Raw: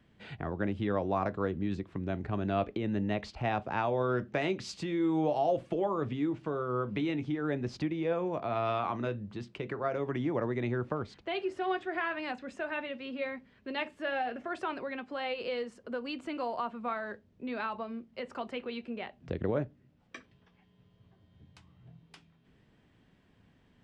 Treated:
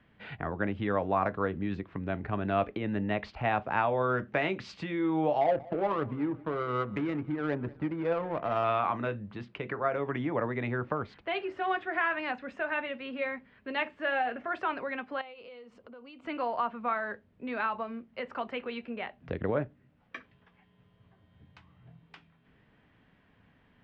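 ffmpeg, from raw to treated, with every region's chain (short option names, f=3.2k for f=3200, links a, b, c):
-filter_complex "[0:a]asettb=1/sr,asplit=3[a][b][c];[a]atrim=end=5.414[d];[b]atrim=start=5.41:end=8.64,asetpts=PTS-STARTPTS,afade=t=in:d=0.004:c=qsin,afade=t=out:st=3.226:d=0.004:c=qsin,adynamicsmooth=sensitivity=4:basefreq=580,aecho=1:1:187|374|561:0.0841|0.0404|0.0194,atrim=end_sample=142443[e];[c]atrim=start=8.636[f];[d][e]acrossfade=d=0.004:c1=hsin:c2=qsin[g];[g][f]acrossfade=d=0.004:c1=qsin:c2=hsin,asettb=1/sr,asplit=3[h][i][j];[h]atrim=end=15.214[k];[i]atrim=start=15.21:end=16.25,asetpts=PTS-STARTPTS,afade=t=in:d=0.004:c=qsin,afade=t=out:st=1.036:d=0.004:c=qsin,equalizer=f=1.7k:w=3.9:g=-11,acompressor=threshold=-50dB:ratio=4:attack=3.2:release=140:knee=1:detection=peak[l];[j]atrim=start=16.246[m];[k][l]acrossfade=d=0.004:c1=hsin:c2=qsin[n];[n][m]acrossfade=d=0.004:c1=qsin:c2=hsin,lowpass=2.1k,tiltshelf=f=970:g=-5,bandreject=f=360:w=12,volume=4.5dB"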